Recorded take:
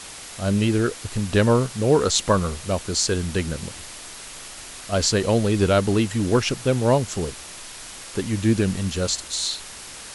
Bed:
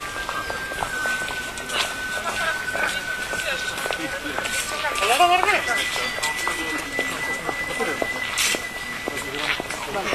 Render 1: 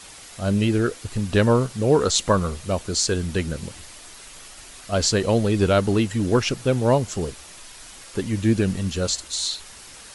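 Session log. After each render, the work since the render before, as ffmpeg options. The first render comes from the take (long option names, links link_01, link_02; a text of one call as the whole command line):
ffmpeg -i in.wav -af "afftdn=noise_reduction=6:noise_floor=-39" out.wav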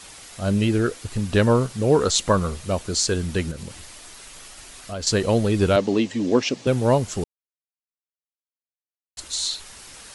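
ffmpeg -i in.wav -filter_complex "[0:a]asettb=1/sr,asplit=3[link_01][link_02][link_03];[link_01]atrim=end=3.514[link_04];[link_02]atrim=start=3.51:end=5.07,asetpts=PTS-STARTPTS,afade=type=in:duration=0.004:curve=qsin,afade=type=out:start_time=1.556:duration=0.004:curve=qsin,acompressor=threshold=-30dB:ratio=3:attack=3.2:release=140:knee=1:detection=peak[link_05];[link_03]atrim=start=5.066[link_06];[link_04][link_05]acrossfade=duration=0.004:curve1=hsin:curve2=qsin[link_07];[link_07][link_06]acrossfade=duration=0.004:curve1=qsin:curve2=hsin,asettb=1/sr,asplit=3[link_08][link_09][link_10];[link_08]atrim=end=5.764[link_11];[link_09]atrim=start=5.76:end=6.67,asetpts=PTS-STARTPTS,afade=type=in:duration=0.004:curve=qsin,afade=type=out:start_time=0.906:duration=0.004:curve=qsin,highpass=220,equalizer=frequency=260:width_type=q:width=4:gain=6,equalizer=frequency=550:width_type=q:width=4:gain=3,equalizer=frequency=1400:width_type=q:width=4:gain=-10,lowpass=frequency=6900:width=0.5412,lowpass=frequency=6900:width=1.3066[link_12];[link_10]atrim=start=6.666[link_13];[link_11][link_12]acrossfade=duration=0.004:curve1=hsin:curve2=qsin[link_14];[link_14][link_13]acrossfade=duration=0.004:curve1=qsin:curve2=hsin,asplit=3[link_15][link_16][link_17];[link_15]atrim=end=7.24,asetpts=PTS-STARTPTS,afade=type=out:start_time=7.236:duration=0.004:curve=hsin[link_18];[link_16]atrim=start=7.24:end=9.17,asetpts=PTS-STARTPTS,volume=0[link_19];[link_17]atrim=start=9.17,asetpts=PTS-STARTPTS,afade=type=in:duration=0.004:curve=hsin[link_20];[link_18][link_19][link_20]concat=n=3:v=0:a=1" out.wav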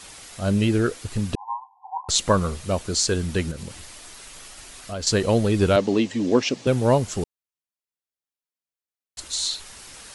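ffmpeg -i in.wav -filter_complex "[0:a]asettb=1/sr,asplit=3[link_01][link_02][link_03];[link_01]atrim=end=1.354[link_04];[link_02]atrim=start=1.35:end=2.09,asetpts=PTS-STARTPTS,afade=type=in:duration=0.004:curve=qsin,afade=type=out:start_time=0.736:duration=0.004:curve=qsin,asuperpass=centerf=890:order=20:qfactor=2.8[link_05];[link_03]atrim=start=2.086[link_06];[link_04][link_05]acrossfade=duration=0.004:curve1=hsin:curve2=qsin[link_07];[link_07][link_06]acrossfade=duration=0.004:curve1=qsin:curve2=hsin" out.wav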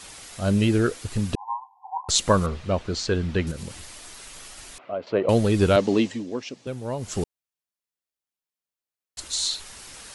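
ffmpeg -i in.wav -filter_complex "[0:a]asettb=1/sr,asplit=3[link_01][link_02][link_03];[link_01]atrim=end=2.464[link_04];[link_02]atrim=start=2.46:end=3.47,asetpts=PTS-STARTPTS,afade=type=in:duration=0.004:curve=qsin,afade=type=out:start_time=1.006:duration=0.004:curve=qsin,lowpass=3500[link_05];[link_03]atrim=start=3.466[link_06];[link_04][link_05]acrossfade=duration=0.004:curve1=hsin:curve2=qsin[link_07];[link_07][link_06]acrossfade=duration=0.004:curve1=qsin:curve2=hsin,asettb=1/sr,asplit=3[link_08][link_09][link_10];[link_08]atrim=end=4.784[link_11];[link_09]atrim=start=4.78:end=5.29,asetpts=PTS-STARTPTS,afade=type=in:duration=0.004:curve=qsin,afade=type=out:start_time=0.506:duration=0.004:curve=qsin,highpass=frequency=150:width=0.5412,highpass=frequency=150:width=1.3066,equalizer=frequency=150:width_type=q:width=4:gain=-10,equalizer=frequency=220:width_type=q:width=4:gain=-8,equalizer=frequency=600:width_type=q:width=4:gain=7,equalizer=frequency=1700:width_type=q:width=4:gain=-10,lowpass=frequency=2300:width=0.5412,lowpass=frequency=2300:width=1.3066[link_12];[link_10]atrim=start=5.286[link_13];[link_11][link_12]acrossfade=duration=0.004:curve1=hsin:curve2=qsin[link_14];[link_14][link_13]acrossfade=duration=0.004:curve1=qsin:curve2=hsin,asplit=3[link_15][link_16][link_17];[link_15]atrim=end=6.25,asetpts=PTS-STARTPTS,afade=type=out:start_time=6.06:duration=0.19:silence=0.251189[link_18];[link_16]atrim=start=6.25:end=6.97,asetpts=PTS-STARTPTS,volume=-12dB[link_19];[link_17]atrim=start=6.97,asetpts=PTS-STARTPTS,afade=type=in:duration=0.19:silence=0.251189[link_20];[link_18][link_19][link_20]concat=n=3:v=0:a=1" out.wav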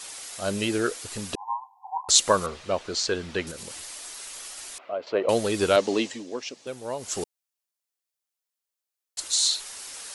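ffmpeg -i in.wav -af "bass=frequency=250:gain=-15,treble=frequency=4000:gain=5" out.wav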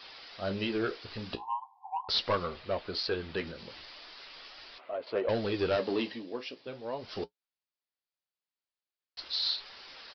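ffmpeg -i in.wav -af "aresample=11025,asoftclip=type=tanh:threshold=-18.5dB,aresample=44100,flanger=delay=7.7:depth=9.7:regen=-51:speed=0.4:shape=sinusoidal" out.wav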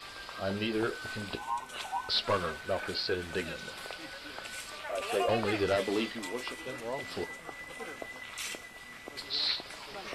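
ffmpeg -i in.wav -i bed.wav -filter_complex "[1:a]volume=-17.5dB[link_01];[0:a][link_01]amix=inputs=2:normalize=0" out.wav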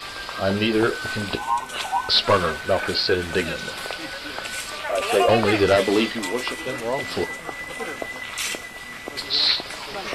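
ffmpeg -i in.wav -af "volume=11.5dB" out.wav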